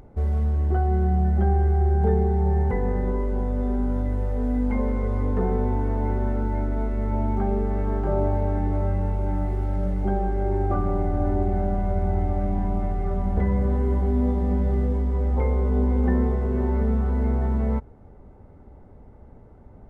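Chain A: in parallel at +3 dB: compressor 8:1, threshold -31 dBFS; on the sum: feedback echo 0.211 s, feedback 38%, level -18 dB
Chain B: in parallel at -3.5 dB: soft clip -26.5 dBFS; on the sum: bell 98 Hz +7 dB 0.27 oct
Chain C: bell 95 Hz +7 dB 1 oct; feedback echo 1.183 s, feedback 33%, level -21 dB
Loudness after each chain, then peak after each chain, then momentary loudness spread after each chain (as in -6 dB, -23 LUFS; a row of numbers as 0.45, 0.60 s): -22.0, -21.0, -21.5 LUFS; -8.5, -9.0, -7.5 dBFS; 4, 4, 6 LU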